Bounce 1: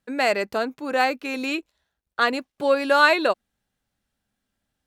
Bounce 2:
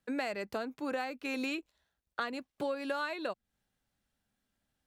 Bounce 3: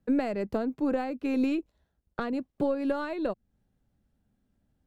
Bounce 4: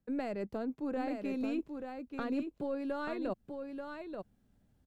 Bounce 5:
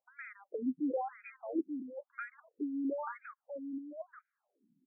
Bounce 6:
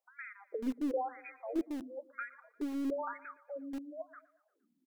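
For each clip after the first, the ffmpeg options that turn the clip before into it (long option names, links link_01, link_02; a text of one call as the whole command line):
ffmpeg -i in.wav -filter_complex "[0:a]acrossover=split=160[link_01][link_02];[link_02]acompressor=threshold=-29dB:ratio=10[link_03];[link_01][link_03]amix=inputs=2:normalize=0,volume=-3.5dB" out.wav
ffmpeg -i in.wav -af "aeval=exprs='0.112*(cos(1*acos(clip(val(0)/0.112,-1,1)))-cos(1*PI/2))+0.0158*(cos(2*acos(clip(val(0)/0.112,-1,1)))-cos(2*PI/2))':channel_layout=same,tiltshelf=frequency=740:gain=10,volume=3.5dB" out.wav
ffmpeg -i in.wav -af "areverse,acompressor=threshold=-36dB:ratio=6,areverse,aecho=1:1:884:0.501,volume=2dB" out.wav
ffmpeg -i in.wav -af "afftfilt=real='re*between(b*sr/1024,230*pow(1800/230,0.5+0.5*sin(2*PI*1*pts/sr))/1.41,230*pow(1800/230,0.5+0.5*sin(2*PI*1*pts/sr))*1.41)':imag='im*between(b*sr/1024,230*pow(1800/230,0.5+0.5*sin(2*PI*1*pts/sr))/1.41,230*pow(1800/230,0.5+0.5*sin(2*PI*1*pts/sr))*1.41)':win_size=1024:overlap=0.75,volume=4dB" out.wav
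ffmpeg -i in.wav -filter_complex "[0:a]aecho=1:1:116|232|348|464:0.106|0.054|0.0276|0.0141,acrossover=split=220|900[link_01][link_02][link_03];[link_01]acrusher=bits=5:dc=4:mix=0:aa=0.000001[link_04];[link_04][link_02][link_03]amix=inputs=3:normalize=0,volume=1dB" out.wav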